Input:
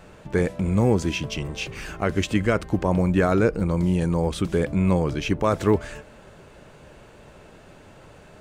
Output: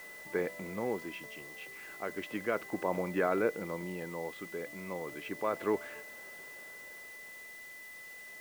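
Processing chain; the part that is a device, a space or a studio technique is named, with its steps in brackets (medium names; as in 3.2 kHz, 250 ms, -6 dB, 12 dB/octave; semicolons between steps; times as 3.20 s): shortwave radio (band-pass 340–2500 Hz; tremolo 0.32 Hz, depth 60%; whistle 2 kHz -40 dBFS; white noise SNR 19 dB); trim -7 dB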